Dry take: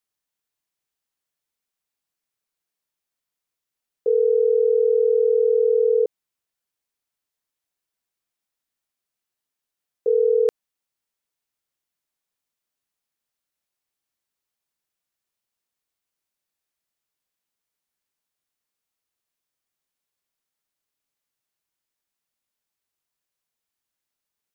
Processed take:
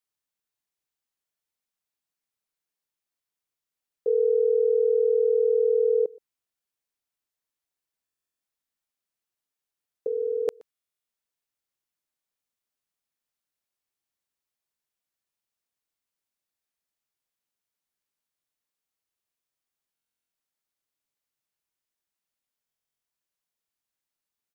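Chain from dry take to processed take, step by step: 10.07–10.48 HPF 770 Hz 6 dB/oct; echo 0.123 s -24 dB; stuck buffer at 8.04/10.71/19.93/22.65, samples 1024, times 15; gain -4 dB

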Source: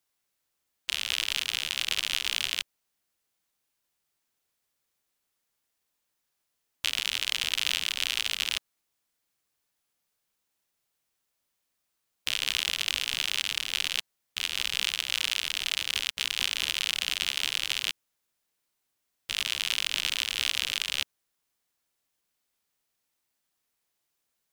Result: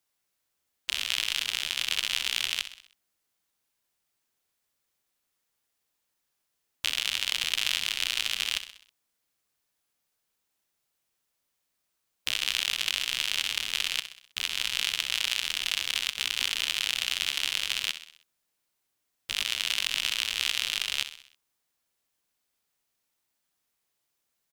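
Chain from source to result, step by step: feedback echo 64 ms, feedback 51%, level -12 dB

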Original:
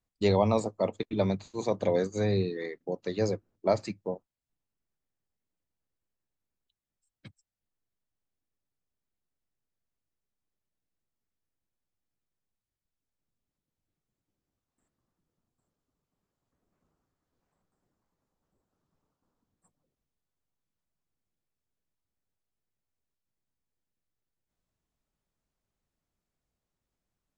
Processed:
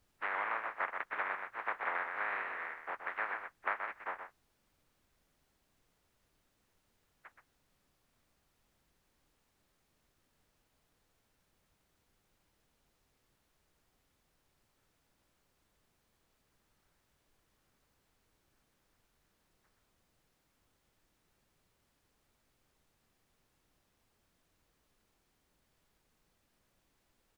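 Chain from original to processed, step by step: spectral contrast lowered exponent 0.17; HPF 1100 Hz 12 dB/oct; echo 0.125 s -8.5 dB; compressor, threshold -28 dBFS, peak gain reduction 8 dB; steep low-pass 1900 Hz 36 dB/oct; added noise pink -80 dBFS; gain +4 dB

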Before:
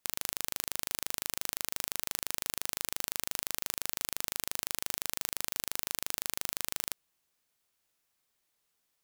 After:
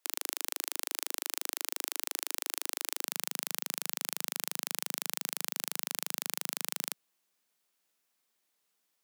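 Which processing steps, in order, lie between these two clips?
steep high-pass 310 Hz 36 dB/oct, from 3.05 s 160 Hz

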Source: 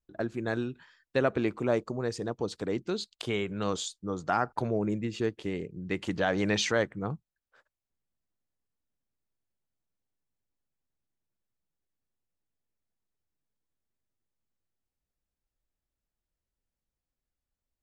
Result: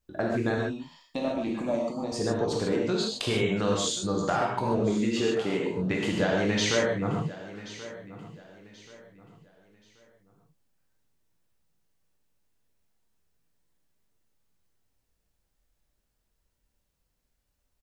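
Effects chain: 4.79–5.77 HPF 220 Hz 12 dB/oct; compressor 5:1, threshold -34 dBFS, peak gain reduction 12 dB; 0.57–2.12 fixed phaser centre 420 Hz, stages 6; feedback echo 1.081 s, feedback 33%, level -16 dB; non-linear reverb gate 0.17 s flat, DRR -2.5 dB; gain +7 dB

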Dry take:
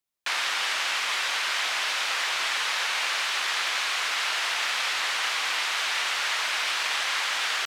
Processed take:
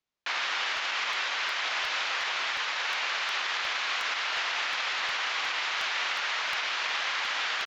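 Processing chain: vocal rider; limiter -19 dBFS, peak gain reduction 6 dB; air absorption 100 m; downsampling 16000 Hz; crackling interface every 0.36 s, samples 64, repeat, from 0.77

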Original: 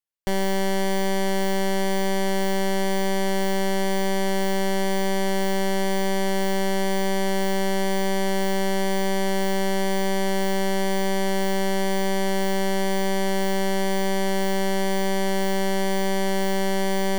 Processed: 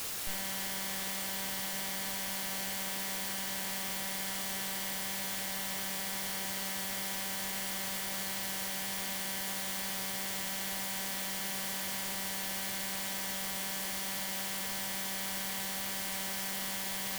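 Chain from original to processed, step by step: passive tone stack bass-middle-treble 10-0-10; requantised 6-bit, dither triangular; soft clip -29.5 dBFS, distortion -7 dB

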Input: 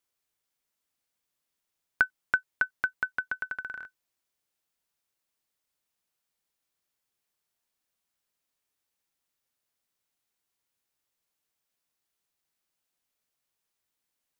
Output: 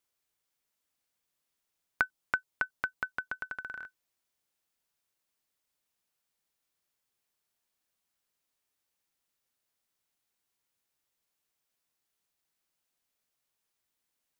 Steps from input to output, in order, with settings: dynamic EQ 1800 Hz, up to -7 dB, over -39 dBFS, Q 1.4

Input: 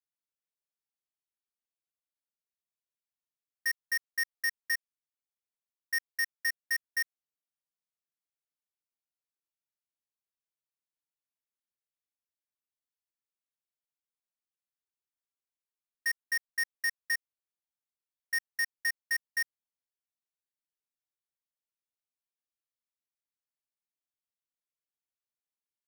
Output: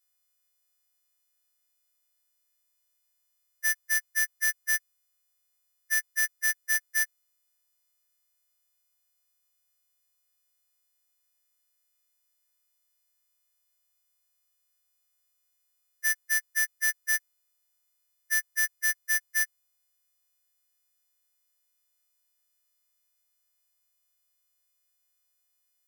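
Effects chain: frequency quantiser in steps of 3 st; in parallel at 0 dB: limiter -25 dBFS, peak gain reduction 9 dB; on the sum: hard clip -19.5 dBFS, distortion -17 dB

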